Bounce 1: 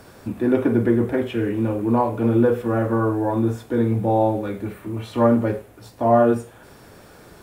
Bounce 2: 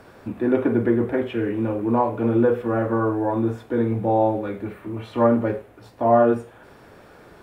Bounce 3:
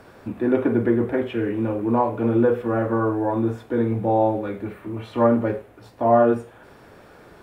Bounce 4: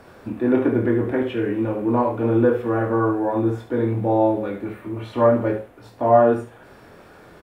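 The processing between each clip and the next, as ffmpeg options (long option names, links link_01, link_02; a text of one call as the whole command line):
ffmpeg -i in.wav -af "bass=frequency=250:gain=-4,treble=frequency=4000:gain=-11" out.wav
ffmpeg -i in.wav -af anull out.wav
ffmpeg -i in.wav -af "aecho=1:1:24|70:0.501|0.316" out.wav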